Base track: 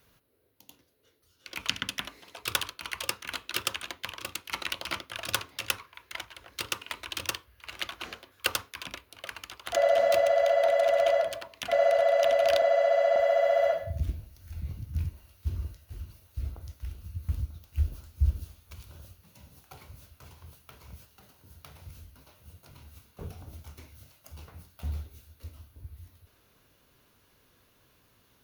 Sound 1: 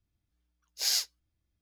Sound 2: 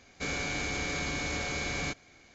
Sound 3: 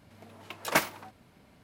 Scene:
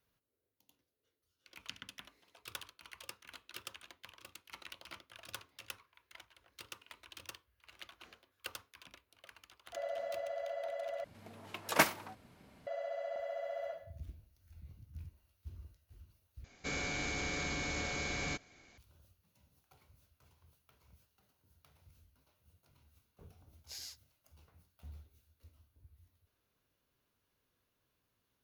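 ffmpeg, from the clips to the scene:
-filter_complex "[0:a]volume=-17dB[a];[1:a]acompressor=threshold=-30dB:ratio=6:attack=3.2:release=140:knee=1:detection=peak[b];[a]asplit=3[c][d][e];[c]atrim=end=11.044[f];[3:a]atrim=end=1.63,asetpts=PTS-STARTPTS,volume=-2dB[g];[d]atrim=start=12.666:end=16.444[h];[2:a]atrim=end=2.34,asetpts=PTS-STARTPTS,volume=-4.5dB[i];[e]atrim=start=18.776[j];[b]atrim=end=1.61,asetpts=PTS-STARTPTS,volume=-13dB,afade=t=in:d=0.004:c=hsin,afade=t=out:st=1.606:d=0.004:c=hsin,adelay=22900[k];[f][g]acrossfade=d=0.004:c1=hsin:c2=hsin[l];[l][h]acrossfade=d=0.004:c1=hsin:c2=hsin[m];[m][i]acrossfade=d=0.004:c1=hsin:c2=hsin[n];[n][j]acrossfade=d=0.004:c1=hsin:c2=hsin[o];[o][k]amix=inputs=2:normalize=0"

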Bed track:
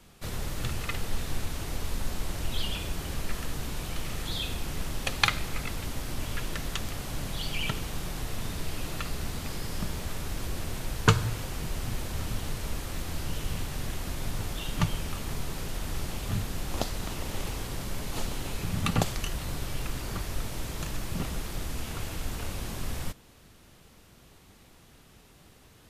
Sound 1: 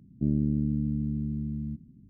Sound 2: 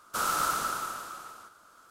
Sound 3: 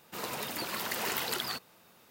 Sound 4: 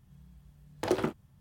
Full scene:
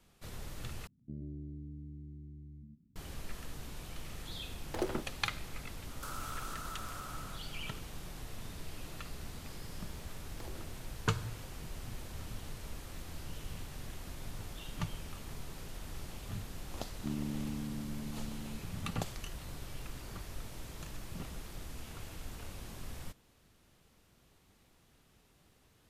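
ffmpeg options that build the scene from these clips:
-filter_complex "[1:a]asplit=2[a][b];[4:a]asplit=2[c][d];[0:a]volume=-11dB[e];[a]aecho=1:1:29.15|125.4:0.447|0.708[f];[2:a]acompressor=threshold=-40dB:ratio=6:attack=3.2:release=140:knee=1:detection=peak[g];[d]acompressor=threshold=-45dB:ratio=6:attack=3.2:release=140:knee=1:detection=peak[h];[b]highpass=160[i];[e]asplit=2[j][k];[j]atrim=end=0.874[l];[f]atrim=end=2.09,asetpts=PTS-STARTPTS,volume=-17dB[m];[k]atrim=start=2.956[n];[c]atrim=end=1.4,asetpts=PTS-STARTPTS,volume=-7dB,afade=t=in:d=0.004:c=hsin,afade=t=out:st=1.396:d=0.004:c=hsin,adelay=3910[o];[g]atrim=end=1.9,asetpts=PTS-STARTPTS,volume=-2dB,afade=t=in:d=0.004:c=hsin,afade=t=out:st=1.896:d=0.004:c=hsin,adelay=259749S[p];[h]atrim=end=1.4,asetpts=PTS-STARTPTS,volume=-4.5dB,afade=t=in:d=0.004:c=hsin,afade=t=out:st=1.396:d=0.004:c=hsin,adelay=9570[q];[i]atrim=end=2.09,asetpts=PTS-STARTPTS,volume=-9.5dB,afade=t=in:d=0.004:c=hsin,afade=t=out:st=2.086:d=0.004:c=hsin,adelay=16830[r];[l][m]acrossfade=d=0.004:c1=hsin:c2=hsin[s];[s][n]acrossfade=d=0.004:c1=hsin:c2=hsin[t];[t][o][p][q][r]amix=inputs=5:normalize=0"

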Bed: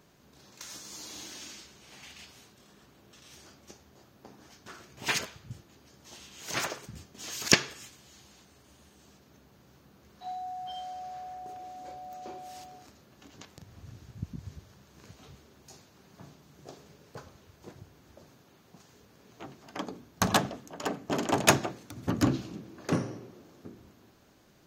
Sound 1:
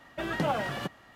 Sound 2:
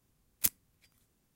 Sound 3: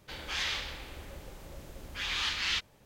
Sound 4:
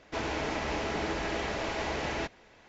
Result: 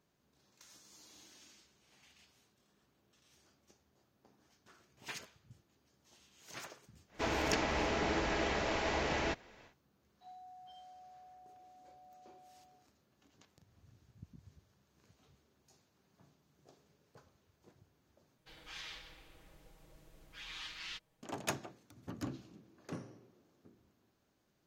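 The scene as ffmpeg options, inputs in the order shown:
-filter_complex "[0:a]volume=-16dB[a];[3:a]aecho=1:1:6.3:0.67[b];[a]asplit=2[c][d];[c]atrim=end=18.384[e];[b]atrim=end=2.85,asetpts=PTS-STARTPTS,volume=-16dB[f];[d]atrim=start=21.226[g];[4:a]atrim=end=2.68,asetpts=PTS-STARTPTS,volume=-1.5dB,afade=t=in:d=0.1,afade=t=out:st=2.58:d=0.1,adelay=7070[h];[e][f]acrossfade=d=0.004:c1=hsin:c2=hsin[i];[i][g]acrossfade=d=0.004:c1=hsin:c2=hsin[j];[j][h]amix=inputs=2:normalize=0"

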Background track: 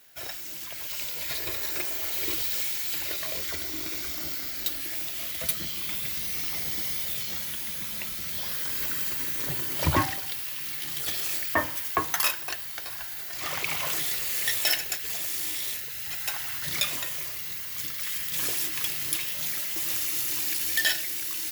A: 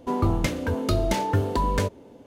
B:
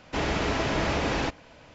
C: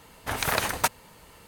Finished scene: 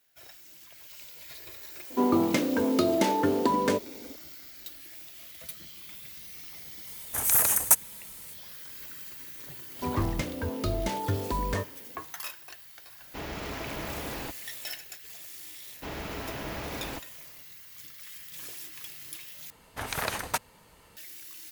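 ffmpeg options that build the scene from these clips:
-filter_complex "[1:a]asplit=2[a][b];[3:a]asplit=2[c][d];[2:a]asplit=2[e][f];[0:a]volume=-13.5dB[g];[a]highpass=f=260:t=q:w=1.8[h];[c]aexciter=amount=7.9:drive=6.5:freq=6.3k[i];[g]asplit=2[j][k];[j]atrim=end=19.504[l];[d]atrim=end=1.47,asetpts=PTS-STARTPTS,volume=-5.5dB[m];[k]atrim=start=20.966[n];[h]atrim=end=2.26,asetpts=PTS-STARTPTS,volume=-1dB,afade=t=in:d=0.004:c=hsin,afade=t=out:st=2.256:d=0.004:c=hsin,adelay=1900[o];[i]atrim=end=1.47,asetpts=PTS-STARTPTS,volume=-8dB,afade=t=in:d=0.004:c=hsin,afade=t=out:st=1.466:d=0.004:c=hsin,adelay=6870[p];[b]atrim=end=2.26,asetpts=PTS-STARTPTS,volume=-6.5dB,afade=t=in:d=0.004:c=hsin,afade=t=out:st=2.256:d=0.004:c=hsin,adelay=9750[q];[e]atrim=end=1.74,asetpts=PTS-STARTPTS,volume=-10.5dB,afade=t=in:d=0.004:c=hsin,afade=t=out:st=1.736:d=0.004:c=hsin,adelay=13010[r];[f]atrim=end=1.74,asetpts=PTS-STARTPTS,volume=-10.5dB,afade=t=in:d=0.004:c=hsin,afade=t=out:st=1.736:d=0.004:c=hsin,adelay=15690[s];[l][m]acrossfade=d=0.004:c1=hsin:c2=hsin[t];[t][n]acrossfade=d=0.004:c1=hsin:c2=hsin[u];[u][o][p][q][r][s]amix=inputs=6:normalize=0"

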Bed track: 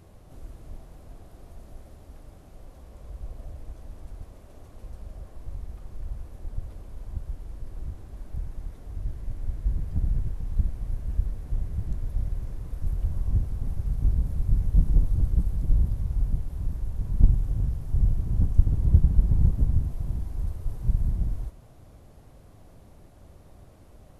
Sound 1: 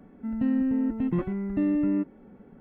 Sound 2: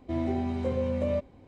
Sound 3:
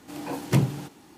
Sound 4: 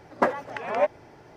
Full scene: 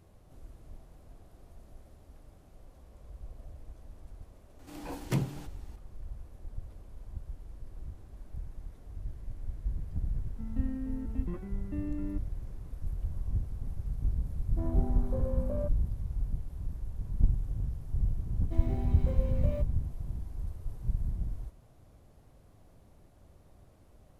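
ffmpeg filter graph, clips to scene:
-filter_complex "[2:a]asplit=2[a][b];[0:a]volume=-7.5dB[c];[a]afwtdn=0.0126[d];[b]acrusher=bits=9:mode=log:mix=0:aa=0.000001[e];[3:a]atrim=end=1.17,asetpts=PTS-STARTPTS,volume=-8.5dB,afade=t=in:d=0.004:c=hsin,afade=t=out:st=1.166:d=0.004:c=hsin,adelay=4590[f];[1:a]atrim=end=2.6,asetpts=PTS-STARTPTS,volume=-13dB,afade=t=in:d=0.004:c=hsin,afade=t=out:st=2.596:d=0.004:c=hsin,adelay=10150[g];[d]atrim=end=1.47,asetpts=PTS-STARTPTS,volume=-7.5dB,afade=t=in:d=0.004:c=hsin,afade=t=out:st=1.466:d=0.004:c=hsin,adelay=14480[h];[e]atrim=end=1.47,asetpts=PTS-STARTPTS,volume=-9.5dB,afade=t=in:d=0.004:c=hsin,afade=t=out:st=1.466:d=0.004:c=hsin,adelay=18420[i];[c][f][g][h][i]amix=inputs=5:normalize=0"

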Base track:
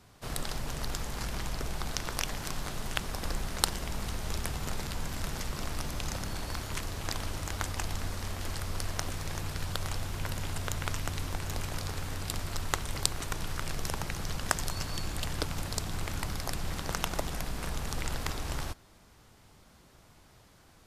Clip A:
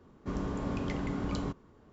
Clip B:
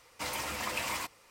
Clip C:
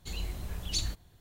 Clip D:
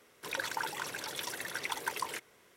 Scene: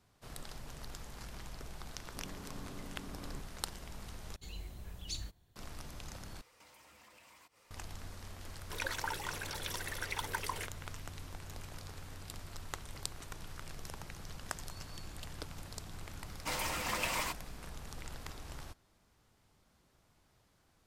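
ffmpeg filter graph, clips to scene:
-filter_complex "[2:a]asplit=2[a][b];[0:a]volume=-12dB[c];[a]acompressor=threshold=-54dB:ratio=6:attack=3.2:release=140:knee=1:detection=peak[d];[c]asplit=3[e][f][g];[e]atrim=end=4.364[h];[3:a]atrim=end=1.2,asetpts=PTS-STARTPTS,volume=-9.5dB[i];[f]atrim=start=5.556:end=6.414[j];[d]atrim=end=1.3,asetpts=PTS-STARTPTS,volume=-5.5dB[k];[g]atrim=start=7.706[l];[1:a]atrim=end=1.92,asetpts=PTS-STARTPTS,volume=-15dB,afade=t=in:d=0.004:c=hsin,afade=t=out:st=1.916:d=0.004:c=hsin,adelay=1890[m];[4:a]atrim=end=2.56,asetpts=PTS-STARTPTS,volume=-2.5dB,afade=t=in:d=0.004:c=hsin,afade=t=out:st=2.556:d=0.004:c=hsin,adelay=8470[n];[b]atrim=end=1.3,asetpts=PTS-STARTPTS,volume=-1dB,afade=t=in:d=0.004:c=hsin,afade=t=out:st=1.296:d=0.004:c=hsin,adelay=16260[o];[h][i]acrossfade=d=0.004:c1=hsin:c2=hsin[p];[p][j]acrossfade=d=0.004:c1=hsin:c2=hsin[q];[q][k]acrossfade=d=0.004:c1=hsin:c2=hsin[r];[r][l]acrossfade=d=0.004:c1=hsin:c2=hsin[s];[s][m][n][o]amix=inputs=4:normalize=0"

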